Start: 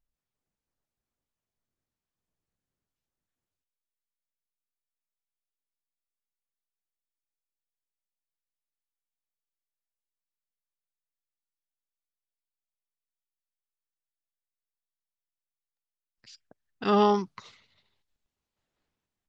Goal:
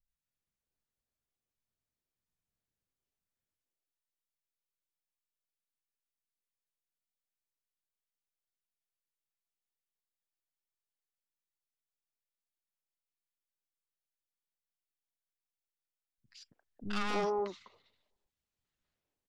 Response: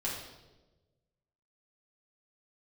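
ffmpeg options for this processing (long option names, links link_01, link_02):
-filter_complex "[0:a]aeval=exprs='(tanh(20*val(0)+0.7)-tanh(0.7))/20':channel_layout=same,acrossover=split=260|950[link_01][link_02][link_03];[link_03]adelay=80[link_04];[link_02]adelay=280[link_05];[link_01][link_05][link_04]amix=inputs=3:normalize=0"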